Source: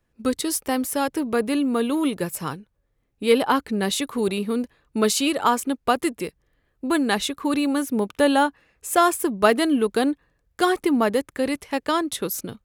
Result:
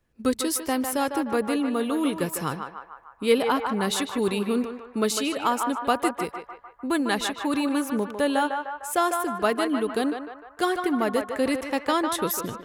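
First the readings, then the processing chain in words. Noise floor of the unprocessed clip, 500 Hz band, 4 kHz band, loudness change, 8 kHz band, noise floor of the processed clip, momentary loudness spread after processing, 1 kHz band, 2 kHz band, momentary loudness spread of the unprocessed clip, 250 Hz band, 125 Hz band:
-71 dBFS, -3.0 dB, -3.0 dB, -3.0 dB, -3.0 dB, -51 dBFS, 7 LU, -2.0 dB, -2.5 dB, 9 LU, -3.0 dB, -2.0 dB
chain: vocal rider within 4 dB 0.5 s; narrowing echo 0.151 s, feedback 63%, band-pass 1100 Hz, level -4 dB; gain -3.5 dB

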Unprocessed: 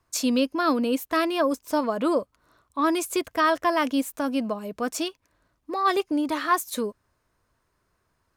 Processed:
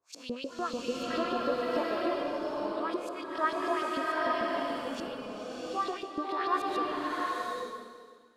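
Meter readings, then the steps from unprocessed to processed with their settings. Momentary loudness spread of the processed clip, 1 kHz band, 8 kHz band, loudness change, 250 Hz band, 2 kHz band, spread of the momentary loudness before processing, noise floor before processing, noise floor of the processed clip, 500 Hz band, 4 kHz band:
9 LU, -5.0 dB, -16.0 dB, -7.5 dB, -10.5 dB, -5.5 dB, 8 LU, -73 dBFS, -52 dBFS, -5.5 dB, -7.0 dB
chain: time blur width 0.106 s; LFO band-pass saw up 6.8 Hz 370–4800 Hz; bloom reverb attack 0.85 s, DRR -4 dB

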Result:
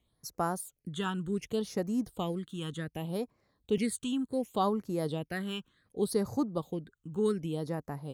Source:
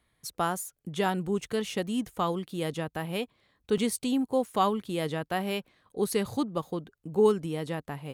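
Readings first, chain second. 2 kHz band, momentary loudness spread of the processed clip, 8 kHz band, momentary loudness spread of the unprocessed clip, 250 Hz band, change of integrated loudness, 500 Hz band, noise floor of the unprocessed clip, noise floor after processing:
-6.0 dB, 9 LU, -4.5 dB, 10 LU, -2.0 dB, -4.0 dB, -4.5 dB, -78 dBFS, -79 dBFS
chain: phaser stages 8, 0.67 Hz, lowest notch 620–3300 Hz; gain -2 dB

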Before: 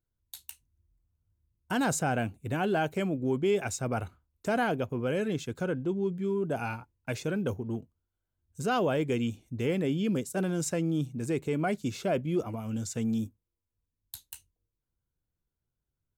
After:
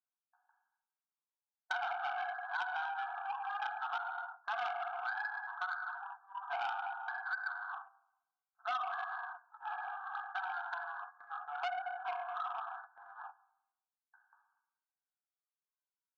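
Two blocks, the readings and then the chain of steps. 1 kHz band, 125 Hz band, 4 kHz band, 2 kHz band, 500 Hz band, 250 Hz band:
-1.0 dB, under -40 dB, -8.0 dB, -0.5 dB, -19.0 dB, under -40 dB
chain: in parallel at -5.5 dB: companded quantiser 4-bit; on the sum: phaser 0.15 Hz, delay 2.6 ms, feedback 55%; brick-wall FIR band-pass 700–1700 Hz; shoebox room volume 450 m³, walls mixed, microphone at 1.5 m; gate -50 dBFS, range -14 dB; compressor 5:1, threshold -39 dBFS, peak gain reduction 19 dB; core saturation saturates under 2400 Hz; gain +4 dB

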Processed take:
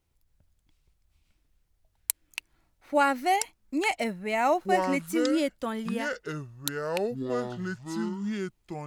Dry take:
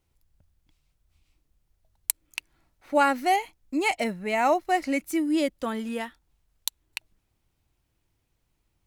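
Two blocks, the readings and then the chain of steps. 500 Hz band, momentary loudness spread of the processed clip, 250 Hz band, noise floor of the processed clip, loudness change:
+0.5 dB, 11 LU, -0.5 dB, -73 dBFS, -2.5 dB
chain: echoes that change speed 0.271 s, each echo -7 st, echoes 2, each echo -6 dB; gain -2 dB

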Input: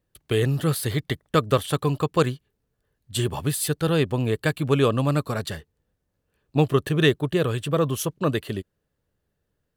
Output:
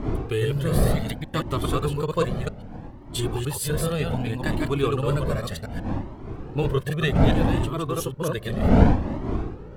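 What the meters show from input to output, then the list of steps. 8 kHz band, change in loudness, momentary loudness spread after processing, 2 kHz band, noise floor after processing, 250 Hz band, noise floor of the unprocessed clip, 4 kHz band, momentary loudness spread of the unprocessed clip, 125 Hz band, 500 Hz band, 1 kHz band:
-2.5 dB, -1.0 dB, 12 LU, -2.0 dB, -40 dBFS, +1.0 dB, -78 dBFS, -3.0 dB, 9 LU, +1.0 dB, -2.0 dB, 0.0 dB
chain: reverse delay 0.138 s, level -2 dB; wind noise 330 Hz -20 dBFS; in parallel at -2.5 dB: compressor, threshold -25 dBFS, peak gain reduction 20.5 dB; on the sum: cascading flanger rising 0.65 Hz; gain -3 dB

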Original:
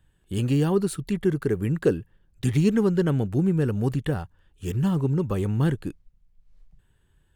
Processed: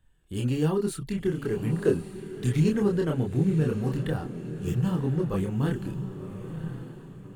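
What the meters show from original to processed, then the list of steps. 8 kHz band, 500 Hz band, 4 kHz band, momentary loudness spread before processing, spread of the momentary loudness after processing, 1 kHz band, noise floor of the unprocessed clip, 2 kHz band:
-2.5 dB, -2.0 dB, -2.5 dB, 10 LU, 13 LU, -2.5 dB, -64 dBFS, -2.5 dB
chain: diffused feedback echo 1.035 s, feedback 41%, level -10.5 dB; chorus voices 6, 0.39 Hz, delay 28 ms, depth 4.3 ms

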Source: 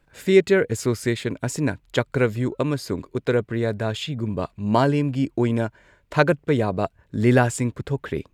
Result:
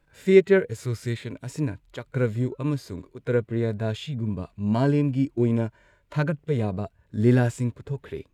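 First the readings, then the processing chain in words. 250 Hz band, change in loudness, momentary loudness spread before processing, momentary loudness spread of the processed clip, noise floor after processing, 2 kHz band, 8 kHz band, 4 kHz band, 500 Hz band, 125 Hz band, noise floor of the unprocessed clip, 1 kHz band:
-2.0 dB, -2.5 dB, 9 LU, 14 LU, -65 dBFS, -6.5 dB, under -10 dB, -8.0 dB, -3.0 dB, -0.5 dB, -63 dBFS, -10.0 dB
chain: harmonic-percussive split percussive -15 dB

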